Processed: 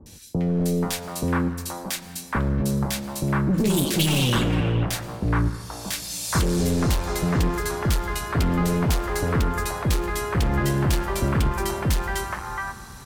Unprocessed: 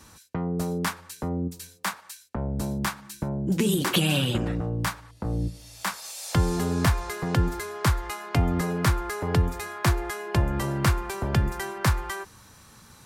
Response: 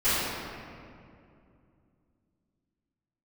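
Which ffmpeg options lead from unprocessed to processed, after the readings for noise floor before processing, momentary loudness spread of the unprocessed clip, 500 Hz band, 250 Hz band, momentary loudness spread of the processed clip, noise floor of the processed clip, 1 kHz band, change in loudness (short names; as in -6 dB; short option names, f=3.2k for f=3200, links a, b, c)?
-53 dBFS, 9 LU, +3.5 dB, +4.0 dB, 8 LU, -41 dBFS, +2.5 dB, +3.0 dB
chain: -filter_complex "[0:a]asoftclip=type=hard:threshold=-25.5dB,acrossover=split=650|2100[a][b][c];[c]adelay=60[d];[b]adelay=480[e];[a][e][d]amix=inputs=3:normalize=0,asplit=2[f][g];[1:a]atrim=start_sample=2205,adelay=108[h];[g][h]afir=irnorm=-1:irlink=0,volume=-29dB[i];[f][i]amix=inputs=2:normalize=0,volume=7.5dB"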